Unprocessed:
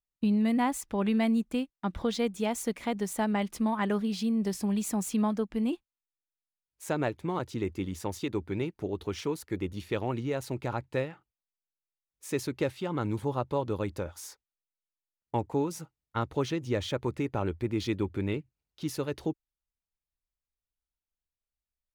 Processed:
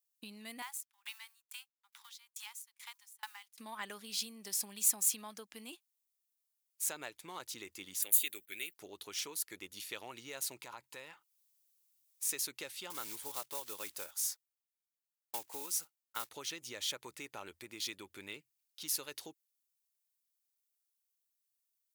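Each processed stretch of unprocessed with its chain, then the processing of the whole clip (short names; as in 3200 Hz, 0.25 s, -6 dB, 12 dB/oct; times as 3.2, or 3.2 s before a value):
0.62–3.58 G.711 law mismatch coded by A + steep high-pass 810 Hz 96 dB/oct + dB-ramp tremolo decaying 2.3 Hz, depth 33 dB
8.02–8.74 RIAA curve recording + gate -53 dBFS, range -22 dB + fixed phaser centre 2300 Hz, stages 4
10.6–12.27 bell 990 Hz +9 dB 0.25 oct + compressor 5:1, threshold -34 dBFS + mismatched tape noise reduction encoder only
12.9–16.31 block floating point 5-bit + low shelf 210 Hz -8 dB + mismatched tape noise reduction decoder only
whole clip: compressor, threshold -29 dBFS; differentiator; gain +8.5 dB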